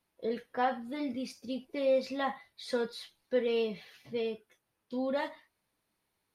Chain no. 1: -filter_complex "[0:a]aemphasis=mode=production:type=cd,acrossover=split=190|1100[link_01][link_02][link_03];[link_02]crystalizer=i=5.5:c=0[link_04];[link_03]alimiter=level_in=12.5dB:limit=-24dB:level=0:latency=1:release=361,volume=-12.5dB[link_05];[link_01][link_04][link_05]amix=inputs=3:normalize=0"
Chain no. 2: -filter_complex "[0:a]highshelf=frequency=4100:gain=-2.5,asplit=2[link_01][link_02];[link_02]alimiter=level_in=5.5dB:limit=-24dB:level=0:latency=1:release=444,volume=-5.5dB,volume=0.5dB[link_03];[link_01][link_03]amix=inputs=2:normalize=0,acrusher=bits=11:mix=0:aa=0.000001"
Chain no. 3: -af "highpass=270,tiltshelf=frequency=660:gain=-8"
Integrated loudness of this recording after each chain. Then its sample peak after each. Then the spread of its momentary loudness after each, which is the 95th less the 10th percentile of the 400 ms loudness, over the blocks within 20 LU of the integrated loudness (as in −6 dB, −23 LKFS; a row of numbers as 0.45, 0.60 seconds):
−34.0, −31.0, −34.5 LKFS; −17.5, −15.5, −14.0 dBFS; 12, 10, 10 LU